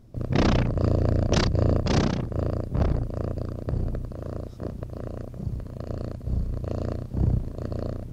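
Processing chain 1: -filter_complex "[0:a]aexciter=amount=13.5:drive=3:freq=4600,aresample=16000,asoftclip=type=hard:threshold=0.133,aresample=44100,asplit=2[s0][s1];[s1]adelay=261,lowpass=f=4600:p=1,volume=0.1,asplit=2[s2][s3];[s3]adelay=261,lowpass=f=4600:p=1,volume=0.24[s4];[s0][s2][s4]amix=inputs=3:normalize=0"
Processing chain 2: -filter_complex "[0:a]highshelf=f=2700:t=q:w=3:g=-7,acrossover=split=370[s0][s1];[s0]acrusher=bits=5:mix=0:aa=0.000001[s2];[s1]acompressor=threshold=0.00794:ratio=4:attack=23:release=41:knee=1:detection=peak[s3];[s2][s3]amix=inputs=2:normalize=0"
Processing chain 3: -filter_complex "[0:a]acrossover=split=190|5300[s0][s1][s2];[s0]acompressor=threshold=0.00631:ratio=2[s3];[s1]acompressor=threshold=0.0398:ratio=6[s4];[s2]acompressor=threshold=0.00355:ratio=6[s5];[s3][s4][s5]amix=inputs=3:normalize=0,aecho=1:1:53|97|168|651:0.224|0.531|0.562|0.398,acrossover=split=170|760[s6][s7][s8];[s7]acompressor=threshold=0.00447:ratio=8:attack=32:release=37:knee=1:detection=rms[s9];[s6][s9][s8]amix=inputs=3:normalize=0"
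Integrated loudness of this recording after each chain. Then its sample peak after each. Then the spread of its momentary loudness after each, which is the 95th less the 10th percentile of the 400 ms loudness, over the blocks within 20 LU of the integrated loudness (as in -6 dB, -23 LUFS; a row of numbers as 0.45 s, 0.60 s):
-27.5 LUFS, -28.0 LUFS, -36.0 LUFS; -11.0 dBFS, -11.0 dBFS, -18.0 dBFS; 13 LU, 11 LU, 7 LU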